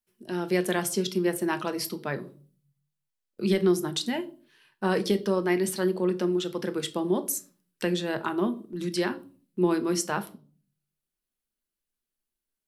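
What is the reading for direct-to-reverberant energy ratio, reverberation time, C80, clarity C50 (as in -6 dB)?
9.0 dB, 0.40 s, 22.5 dB, 17.5 dB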